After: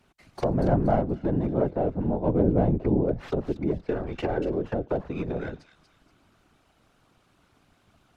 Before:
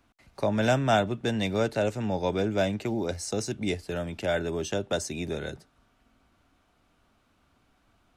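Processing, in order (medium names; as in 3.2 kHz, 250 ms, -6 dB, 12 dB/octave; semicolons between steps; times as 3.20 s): tracing distortion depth 0.3 ms; in parallel at -7 dB: saturation -20 dBFS, distortion -14 dB; on the sum: low-pass that closes with the level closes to 680 Hz, closed at -23.5 dBFS; 2.26–3.14 s: bass shelf 450 Hz +6 dB; 3.88–4.52 s: comb 2.6 ms, depth 71%; on a send: feedback echo behind a high-pass 237 ms, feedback 34%, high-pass 3.5 kHz, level -5 dB; on the sum: whisper effect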